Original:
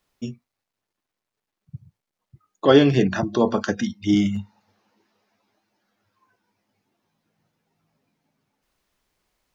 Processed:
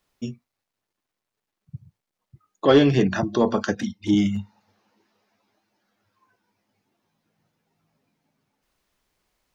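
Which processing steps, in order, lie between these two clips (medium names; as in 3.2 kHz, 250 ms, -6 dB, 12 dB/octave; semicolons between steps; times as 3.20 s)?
3.75–4.18 s: touch-sensitive flanger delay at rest 8.1 ms, full sweep at -17 dBFS; saturation -5.5 dBFS, distortion -21 dB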